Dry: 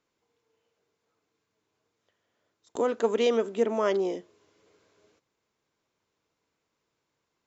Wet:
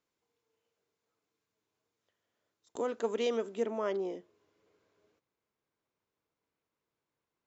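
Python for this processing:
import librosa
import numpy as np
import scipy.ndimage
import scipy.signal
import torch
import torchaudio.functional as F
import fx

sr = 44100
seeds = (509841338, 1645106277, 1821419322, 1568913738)

y = fx.high_shelf(x, sr, hz=4000.0, db=fx.steps((0.0, 2.5), (3.69, -8.0)))
y = y * 10.0 ** (-7.5 / 20.0)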